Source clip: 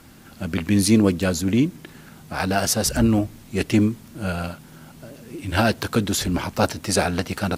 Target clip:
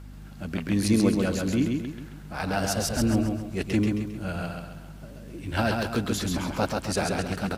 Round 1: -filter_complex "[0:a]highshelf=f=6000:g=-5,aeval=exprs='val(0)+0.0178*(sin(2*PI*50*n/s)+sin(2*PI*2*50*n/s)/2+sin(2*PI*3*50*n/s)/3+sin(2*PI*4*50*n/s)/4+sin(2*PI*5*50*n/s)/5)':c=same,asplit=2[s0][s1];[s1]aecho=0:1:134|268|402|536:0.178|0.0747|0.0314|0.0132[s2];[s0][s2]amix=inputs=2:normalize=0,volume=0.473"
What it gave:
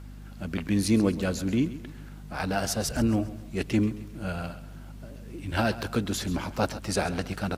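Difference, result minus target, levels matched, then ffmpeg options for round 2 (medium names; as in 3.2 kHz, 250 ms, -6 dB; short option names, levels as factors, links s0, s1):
echo-to-direct -11.5 dB
-filter_complex "[0:a]highshelf=f=6000:g=-5,aeval=exprs='val(0)+0.0178*(sin(2*PI*50*n/s)+sin(2*PI*2*50*n/s)/2+sin(2*PI*3*50*n/s)/3+sin(2*PI*4*50*n/s)/4+sin(2*PI*5*50*n/s)/5)':c=same,asplit=2[s0][s1];[s1]aecho=0:1:134|268|402|536|670:0.668|0.281|0.118|0.0495|0.0208[s2];[s0][s2]amix=inputs=2:normalize=0,volume=0.473"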